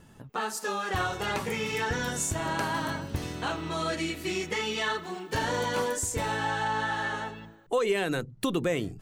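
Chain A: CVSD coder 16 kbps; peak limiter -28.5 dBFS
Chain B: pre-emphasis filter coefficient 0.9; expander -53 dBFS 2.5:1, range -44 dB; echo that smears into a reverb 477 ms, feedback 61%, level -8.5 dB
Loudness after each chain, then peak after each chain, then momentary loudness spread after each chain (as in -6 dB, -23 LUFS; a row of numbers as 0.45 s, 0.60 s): -37.0 LUFS, -38.0 LUFS; -28.5 dBFS, -18.5 dBFS; 3 LU, 11 LU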